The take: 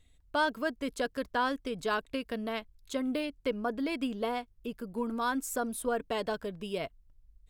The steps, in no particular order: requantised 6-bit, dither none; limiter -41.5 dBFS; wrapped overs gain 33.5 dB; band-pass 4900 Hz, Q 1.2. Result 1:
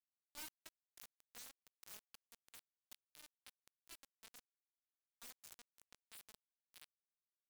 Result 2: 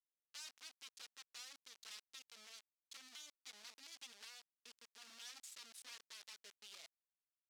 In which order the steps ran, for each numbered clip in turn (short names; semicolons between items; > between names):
band-pass > wrapped overs > requantised > limiter; requantised > wrapped overs > limiter > band-pass